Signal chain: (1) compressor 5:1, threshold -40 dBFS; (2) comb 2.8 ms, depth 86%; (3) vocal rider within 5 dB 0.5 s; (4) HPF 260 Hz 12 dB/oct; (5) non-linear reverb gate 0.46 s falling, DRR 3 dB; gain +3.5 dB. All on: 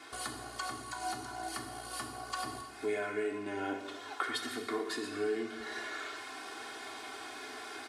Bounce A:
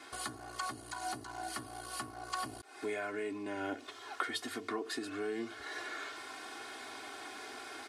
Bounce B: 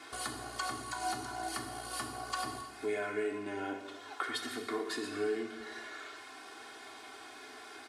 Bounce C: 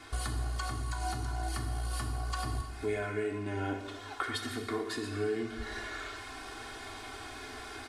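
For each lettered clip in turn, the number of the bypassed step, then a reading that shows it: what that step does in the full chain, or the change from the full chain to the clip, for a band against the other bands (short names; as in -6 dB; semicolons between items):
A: 5, crest factor change +1.5 dB; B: 3, crest factor change -1.5 dB; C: 4, 125 Hz band +17.5 dB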